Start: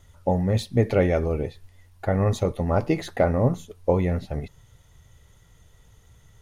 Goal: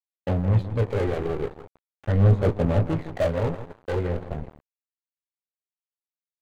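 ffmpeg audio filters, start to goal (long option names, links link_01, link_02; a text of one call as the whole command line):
ffmpeg -i in.wav -filter_complex "[0:a]asplit=2[link_01][link_02];[link_02]adelay=19,volume=-5.5dB[link_03];[link_01][link_03]amix=inputs=2:normalize=0,acrossover=split=110[link_04][link_05];[link_05]asoftclip=type=tanh:threshold=-20dB[link_06];[link_04][link_06]amix=inputs=2:normalize=0,aphaser=in_gain=1:out_gain=1:delay=2.6:decay=0.49:speed=0.4:type=sinusoidal,adynamicsmooth=sensitivity=1.5:basefreq=1100,asplit=2[link_07][link_08];[link_08]adelay=165,lowpass=frequency=2600:poles=1,volume=-10dB,asplit=2[link_09][link_10];[link_10]adelay=165,lowpass=frequency=2600:poles=1,volume=0.45,asplit=2[link_11][link_12];[link_12]adelay=165,lowpass=frequency=2600:poles=1,volume=0.45,asplit=2[link_13][link_14];[link_14]adelay=165,lowpass=frequency=2600:poles=1,volume=0.45,asplit=2[link_15][link_16];[link_16]adelay=165,lowpass=frequency=2600:poles=1,volume=0.45[link_17];[link_09][link_11][link_13][link_15][link_17]amix=inputs=5:normalize=0[link_18];[link_07][link_18]amix=inputs=2:normalize=0,aeval=exprs='sgn(val(0))*max(abs(val(0))-0.0237,0)':channel_layout=same,equalizer=frequency=5400:width=5.4:gain=-4.5" out.wav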